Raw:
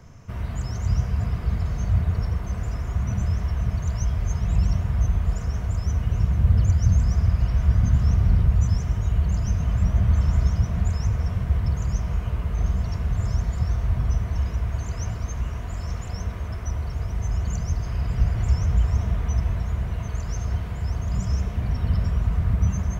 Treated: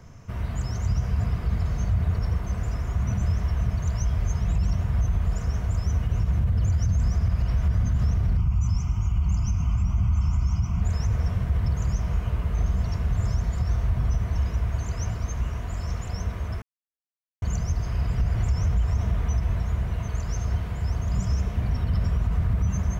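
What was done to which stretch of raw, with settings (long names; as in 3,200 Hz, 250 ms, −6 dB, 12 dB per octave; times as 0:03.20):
0:08.37–0:10.82: phaser with its sweep stopped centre 2,600 Hz, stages 8
0:16.62–0:17.42: silence
whole clip: brickwall limiter −15.5 dBFS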